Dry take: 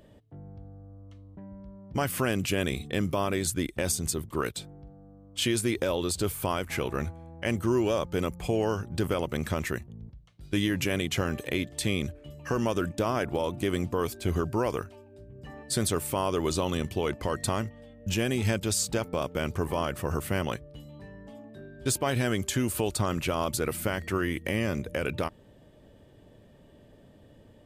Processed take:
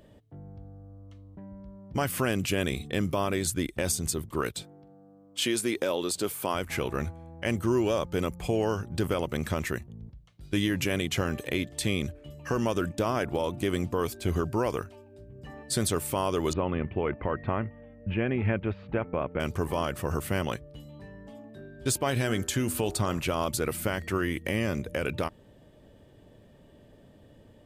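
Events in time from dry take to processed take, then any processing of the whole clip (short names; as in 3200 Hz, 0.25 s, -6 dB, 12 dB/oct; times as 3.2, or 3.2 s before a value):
4.63–6.55 HPF 210 Hz
16.53–19.4 steep low-pass 2500 Hz
22.11–23.2 de-hum 82.04 Hz, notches 22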